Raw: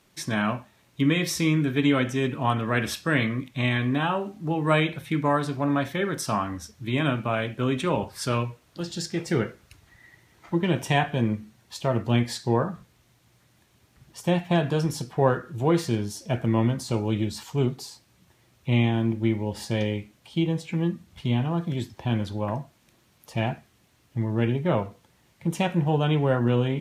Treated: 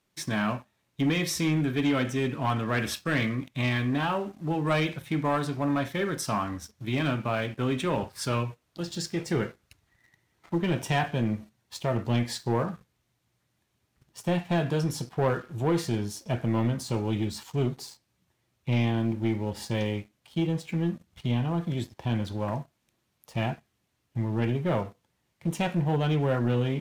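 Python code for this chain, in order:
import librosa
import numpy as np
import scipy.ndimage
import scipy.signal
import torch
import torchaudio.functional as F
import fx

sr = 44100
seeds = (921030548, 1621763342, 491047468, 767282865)

y = fx.leveller(x, sr, passes=2)
y = y * 10.0 ** (-9.0 / 20.0)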